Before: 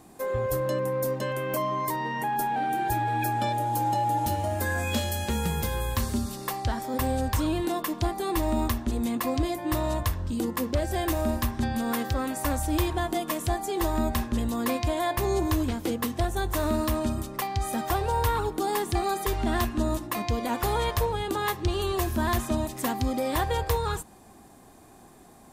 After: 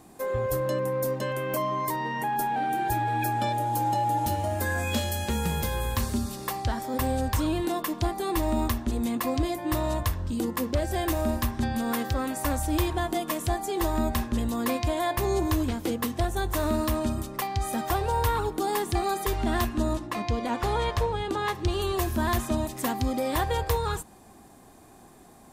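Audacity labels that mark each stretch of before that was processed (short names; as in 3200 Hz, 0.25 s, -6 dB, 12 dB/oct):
4.860000	5.510000	echo throw 0.55 s, feedback 40%, level -16.5 dB
19.930000	21.550000	air absorption 56 m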